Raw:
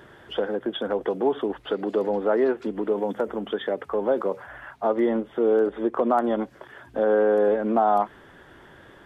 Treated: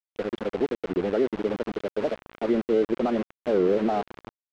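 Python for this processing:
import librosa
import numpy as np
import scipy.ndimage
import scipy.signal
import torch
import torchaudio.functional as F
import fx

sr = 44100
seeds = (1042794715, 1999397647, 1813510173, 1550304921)

y = fx.graphic_eq(x, sr, hz=(125, 1000, 2000), db=(8, -10, -4))
y = fx.stretch_vocoder(y, sr, factor=0.5)
y = fx.echo_diffused(y, sr, ms=1158, feedback_pct=43, wet_db=-13.0)
y = np.where(np.abs(y) >= 10.0 ** (-30.0 / 20.0), y, 0.0)
y = scipy.signal.sosfilt(scipy.signal.butter(2, 3200.0, 'lowpass', fs=sr, output='sos'), y)
y = fx.record_warp(y, sr, rpm=45.0, depth_cents=250.0)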